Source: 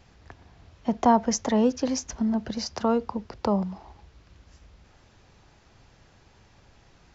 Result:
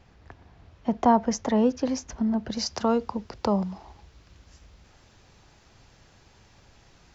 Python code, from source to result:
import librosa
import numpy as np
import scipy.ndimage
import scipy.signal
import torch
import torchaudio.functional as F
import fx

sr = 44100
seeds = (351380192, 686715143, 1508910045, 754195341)

y = fx.high_shelf(x, sr, hz=4000.0, db=fx.steps((0.0, -7.5), (2.5, 5.5)))